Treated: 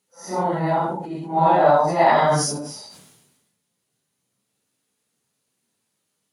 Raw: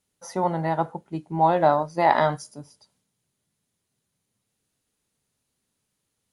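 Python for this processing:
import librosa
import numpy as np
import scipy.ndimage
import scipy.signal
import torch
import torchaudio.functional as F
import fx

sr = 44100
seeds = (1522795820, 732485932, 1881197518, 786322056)

y = fx.phase_scramble(x, sr, seeds[0], window_ms=200)
y = scipy.signal.sosfilt(scipy.signal.butter(2, 150.0, 'highpass', fs=sr, output='sos'), y)
y = fx.sustainer(y, sr, db_per_s=46.0)
y = y * librosa.db_to_amplitude(3.5)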